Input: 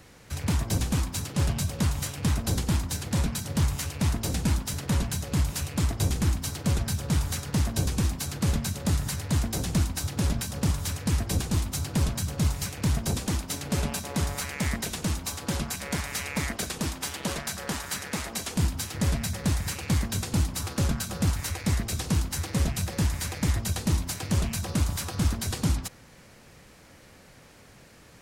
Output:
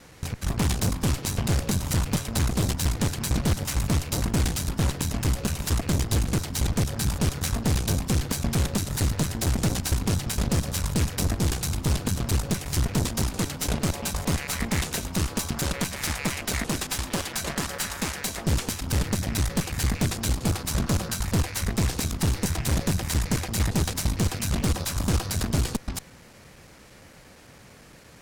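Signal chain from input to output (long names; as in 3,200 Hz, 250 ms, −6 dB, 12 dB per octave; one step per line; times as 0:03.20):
slices reordered back to front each 114 ms, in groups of 2
harmonic generator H 5 −22 dB, 6 −11 dB, 8 −23 dB, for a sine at −14.5 dBFS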